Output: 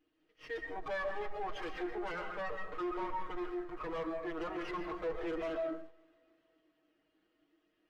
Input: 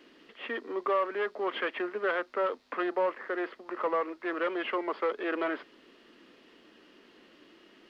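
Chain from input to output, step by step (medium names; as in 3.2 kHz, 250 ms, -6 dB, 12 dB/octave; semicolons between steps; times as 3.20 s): comb filter that takes the minimum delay 6.4 ms; hum notches 60/120/180 Hz; algorithmic reverb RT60 0.67 s, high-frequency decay 0.45×, pre-delay 95 ms, DRR 4 dB; in parallel at -11 dB: bit crusher 7-bit; on the sum: hard clipper -30.5 dBFS, distortion -9 dB; on a send: thinning echo 284 ms, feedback 67%, high-pass 200 Hz, level -21 dB; on the sum: spectral contrast expander 1.5:1; trim -1.5 dB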